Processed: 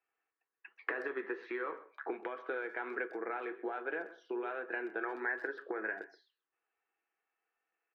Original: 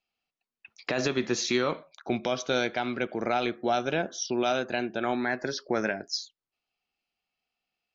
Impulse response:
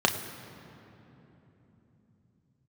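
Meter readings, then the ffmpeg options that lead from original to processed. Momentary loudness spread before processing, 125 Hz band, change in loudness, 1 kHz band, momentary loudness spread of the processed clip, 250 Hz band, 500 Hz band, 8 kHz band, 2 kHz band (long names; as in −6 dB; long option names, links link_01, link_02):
6 LU, below −35 dB, −10.5 dB, −11.0 dB, 6 LU, −13.5 dB, −10.5 dB, can't be measured, −5.0 dB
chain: -filter_complex "[0:a]aecho=1:1:6.1:0.37,acompressor=threshold=-35dB:ratio=16,flanger=delay=9.1:depth=6.1:regen=-68:speed=1.3:shape=sinusoidal,highpass=frequency=340:width=0.5412,highpass=frequency=340:width=1.3066,equalizer=frequency=420:width_type=q:width=4:gain=6,equalizer=frequency=610:width_type=q:width=4:gain=-9,equalizer=frequency=1100:width_type=q:width=4:gain=3,equalizer=frequency=1700:width_type=q:width=4:gain=9,lowpass=frequency=2000:width=0.5412,lowpass=frequency=2000:width=1.3066,asplit=2[link_01][link_02];[link_02]adelay=130,highpass=300,lowpass=3400,asoftclip=type=hard:threshold=-35.5dB,volume=-17dB[link_03];[link_01][link_03]amix=inputs=2:normalize=0,volume=5.5dB"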